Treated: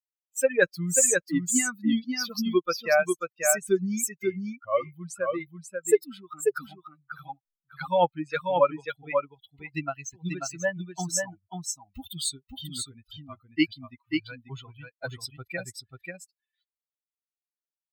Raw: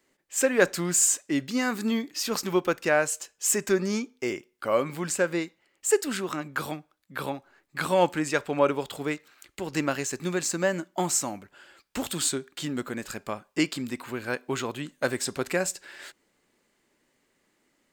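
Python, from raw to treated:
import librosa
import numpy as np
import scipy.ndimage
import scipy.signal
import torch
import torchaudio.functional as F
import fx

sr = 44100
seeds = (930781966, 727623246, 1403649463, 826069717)

p1 = fx.bin_expand(x, sr, power=3.0)
p2 = p1 + fx.echo_single(p1, sr, ms=539, db=-4.5, dry=0)
y = F.gain(torch.from_numpy(p2), 5.0).numpy()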